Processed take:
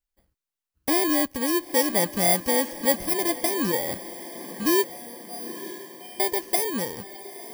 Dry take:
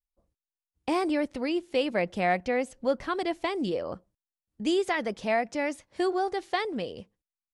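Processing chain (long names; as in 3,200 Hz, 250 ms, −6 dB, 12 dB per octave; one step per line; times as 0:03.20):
samples in bit-reversed order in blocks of 32 samples
0:04.84–0:06.20: tuned comb filter 240 Hz, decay 0.85 s, mix 100%
feedback delay with all-pass diffusion 919 ms, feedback 54%, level −14.5 dB
level +4.5 dB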